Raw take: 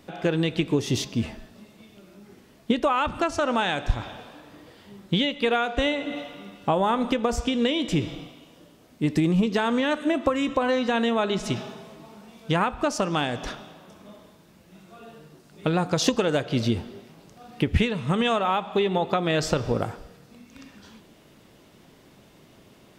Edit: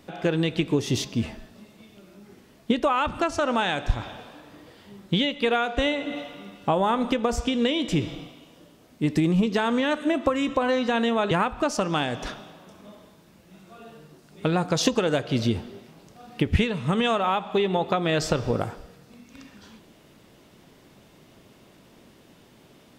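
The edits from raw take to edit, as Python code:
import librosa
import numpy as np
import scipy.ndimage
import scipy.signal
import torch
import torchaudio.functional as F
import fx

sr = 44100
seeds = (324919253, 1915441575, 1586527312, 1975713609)

y = fx.edit(x, sr, fx.cut(start_s=11.31, length_s=1.21), tone=tone)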